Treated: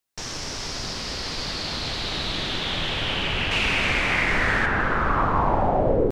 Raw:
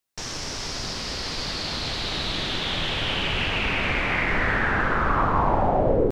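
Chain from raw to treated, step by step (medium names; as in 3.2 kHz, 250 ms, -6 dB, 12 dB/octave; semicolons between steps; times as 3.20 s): 3.51–4.66 s: peaking EQ 8.4 kHz +10.5 dB 2.1 oct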